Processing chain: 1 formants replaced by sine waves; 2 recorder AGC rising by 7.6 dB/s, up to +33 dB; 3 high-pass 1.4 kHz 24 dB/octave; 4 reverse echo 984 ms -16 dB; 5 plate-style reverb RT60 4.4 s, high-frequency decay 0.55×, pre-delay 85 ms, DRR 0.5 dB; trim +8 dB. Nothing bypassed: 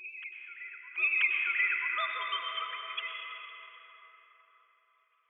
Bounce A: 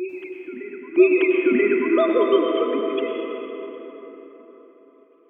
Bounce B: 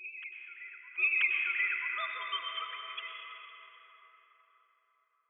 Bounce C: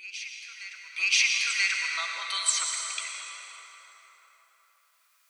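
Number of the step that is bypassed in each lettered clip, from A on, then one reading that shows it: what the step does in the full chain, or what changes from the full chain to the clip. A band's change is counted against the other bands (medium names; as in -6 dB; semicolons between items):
3, crest factor change -2.5 dB; 2, momentary loudness spread change +1 LU; 1, crest factor change +2.5 dB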